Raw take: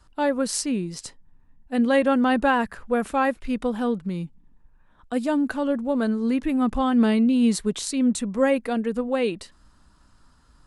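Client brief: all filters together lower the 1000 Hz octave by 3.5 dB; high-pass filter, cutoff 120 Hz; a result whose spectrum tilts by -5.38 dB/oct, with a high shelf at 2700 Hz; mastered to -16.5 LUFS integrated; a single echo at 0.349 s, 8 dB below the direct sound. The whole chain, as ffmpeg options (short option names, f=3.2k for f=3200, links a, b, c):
-af "highpass=120,equalizer=f=1k:t=o:g=-4,highshelf=f=2.7k:g=-5,aecho=1:1:349:0.398,volume=7.5dB"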